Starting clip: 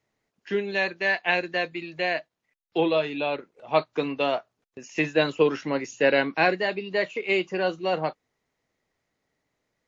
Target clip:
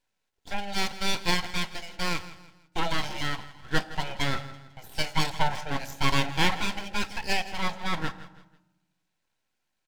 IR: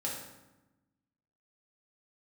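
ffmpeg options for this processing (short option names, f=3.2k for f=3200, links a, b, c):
-filter_complex "[0:a]lowshelf=f=240:g=-11,aecho=1:1:164|328|492:0.158|0.0571|0.0205,aeval=exprs='abs(val(0))':c=same,asuperstop=centerf=1200:order=12:qfactor=7.9,asplit=2[a][b];[b]equalizer=f=740:t=o:w=0.35:g=9.5[c];[1:a]atrim=start_sample=2205[d];[c][d]afir=irnorm=-1:irlink=0,volume=-15.5dB[e];[a][e]amix=inputs=2:normalize=0"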